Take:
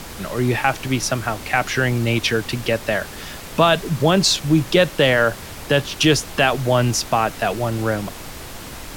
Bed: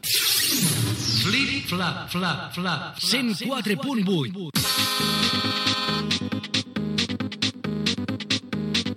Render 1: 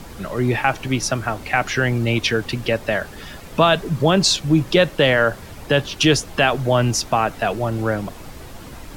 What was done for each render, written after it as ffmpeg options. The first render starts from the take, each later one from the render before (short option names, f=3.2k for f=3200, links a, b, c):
-af "afftdn=nr=8:nf=-35"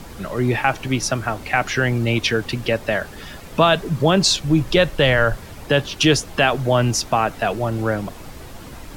-filter_complex "[0:a]asettb=1/sr,asplit=3[a][b][c];[a]atrim=end=4.244[d];[b]atrim=start=4.24:end=5.38,asetpts=PTS-STARTPTS,afade=t=in:d=0.004:c=qsin,afade=t=out:st=1.136:d=0.004:c=qsin,asubboost=boost=11:cutoff=110[e];[c]atrim=start=5.376[f];[d][e]acrossfade=d=0.004:c1=hsin:c2=qsin[g];[g][f]acrossfade=d=0.004:c1=qsin:c2=hsin"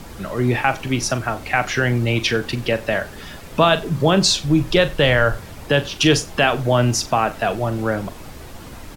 -filter_complex "[0:a]asplit=2[a][b];[b]adelay=41,volume=-12.5dB[c];[a][c]amix=inputs=2:normalize=0,asplit=2[d][e];[e]adelay=93.29,volume=-23dB,highshelf=f=4k:g=-2.1[f];[d][f]amix=inputs=2:normalize=0"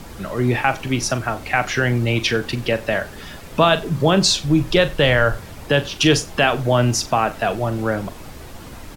-af anull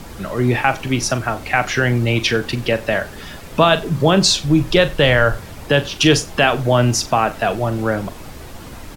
-af "volume=2dB,alimiter=limit=-1dB:level=0:latency=1"